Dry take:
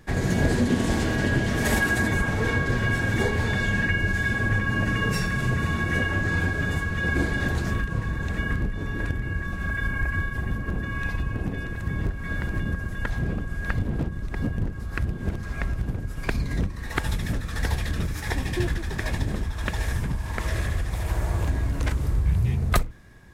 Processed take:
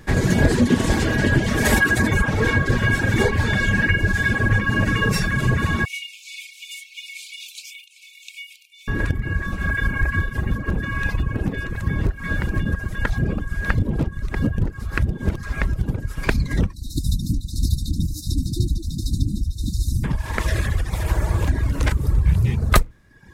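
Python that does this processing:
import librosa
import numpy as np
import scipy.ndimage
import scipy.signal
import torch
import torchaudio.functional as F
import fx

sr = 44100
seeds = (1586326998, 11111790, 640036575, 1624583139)

y = fx.brickwall_highpass(x, sr, low_hz=2200.0, at=(5.85, 8.88))
y = fx.brickwall_bandstop(y, sr, low_hz=340.0, high_hz=3600.0, at=(16.72, 20.03), fade=0.02)
y = fx.notch(y, sr, hz=710.0, q=12.0)
y = fx.dereverb_blind(y, sr, rt60_s=0.82)
y = y * librosa.db_to_amplitude(7.0)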